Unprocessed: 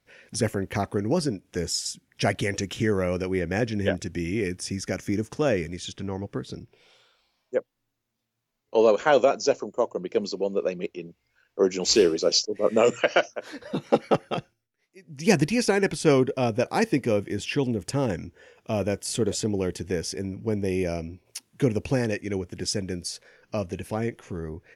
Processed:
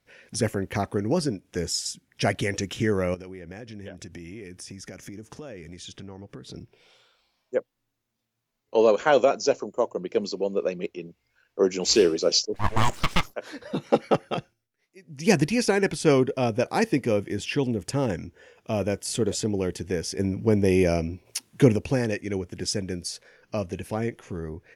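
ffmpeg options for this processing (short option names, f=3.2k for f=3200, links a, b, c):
-filter_complex "[0:a]asettb=1/sr,asplit=3[a][b][c];[a]atrim=end=3.144[d];[b]atrim=start=3.14:end=6.55,asetpts=PTS-STARTPTS,afade=t=in:d=0.004:c=qsin,afade=t=out:st=3.406:d=0.004:c=qsin,acompressor=threshold=-37dB:ratio=6:attack=3.2:release=140:knee=1:detection=peak[e];[c]atrim=start=6.546[f];[d][e]acrossfade=d=0.004:c1=hsin:c2=qsin[g];[g][f]acrossfade=d=0.004:c1=qsin:c2=hsin,asettb=1/sr,asplit=3[h][i][j];[h]atrim=end=12.544[k];[i]atrim=start=12.54:end=13.34,asetpts=PTS-STARTPTS,afade=t=in:d=0.004:c=qsin,afade=t=out:st=0.796:d=0.004:c=qsin,aeval=exprs='abs(val(0))':c=same[l];[j]atrim=start=13.336[m];[k][l]acrossfade=d=0.004:c1=hsin:c2=qsin[n];[n][m]acrossfade=d=0.004:c1=qsin:c2=hsin,asettb=1/sr,asplit=3[o][p][q];[o]atrim=end=20.194[r];[p]atrim=start=20.19:end=21.76,asetpts=PTS-STARTPTS,afade=t=in:d=0.004:c=qsin,afade=t=out:st=1.566:d=0.004:c=qsin,acontrast=50[s];[q]atrim=start=21.756[t];[r][s]acrossfade=d=0.004:c1=hsin:c2=qsin[u];[u][t]acrossfade=d=0.004:c1=qsin:c2=hsin"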